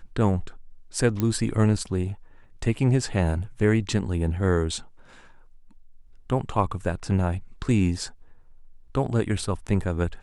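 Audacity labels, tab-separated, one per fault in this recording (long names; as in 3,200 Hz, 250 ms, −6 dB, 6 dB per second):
1.200000	1.200000	click −12 dBFS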